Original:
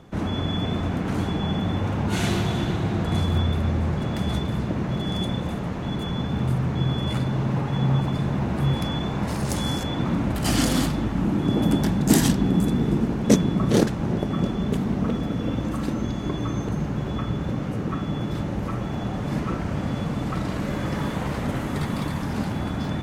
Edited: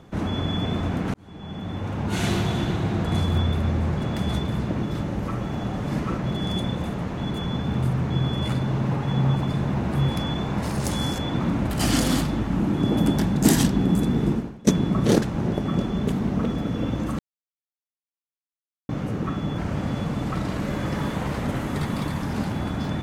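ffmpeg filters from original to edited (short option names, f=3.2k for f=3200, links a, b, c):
-filter_complex "[0:a]asplit=8[a][b][c][d][e][f][g][h];[a]atrim=end=1.14,asetpts=PTS-STARTPTS,afade=t=out:st=1.136:d=0.004:c=hsin[i];[b]atrim=start=1.14:end=4.832,asetpts=PTS-STARTPTS,afade=t=in:d=1.17[j];[c]atrim=start=18.228:end=19.582[k];[d]atrim=start=4.828:end=13.32,asetpts=PTS-STARTPTS,afade=t=out:st=8.142:d=0.35:c=qua:silence=0.0794328[l];[e]atrim=start=13.32:end=15.84,asetpts=PTS-STARTPTS,afade=t=in:d=0.004:c=hsin:silence=0.0794328,afade=t=out:st=2.516:d=0.004:c=hsin[m];[f]atrim=start=15.84:end=17.54,asetpts=PTS-STARTPTS,volume=0[n];[g]atrim=start=17.54:end=18.232,asetpts=PTS-STARTPTS,afade=t=in:d=0.004:c=hsin[o];[h]atrim=start=19.578[p];[i][j]concat=n=2:v=0:a=1[q];[q][k]acrossfade=d=0.004:c1=hsin:c2=hsin[r];[l][m][n][o]concat=n=4:v=0:a=1[s];[r][s]acrossfade=d=0.004:c1=hsin:c2=hsin[t];[t][p]acrossfade=d=0.004:c1=hsin:c2=hsin"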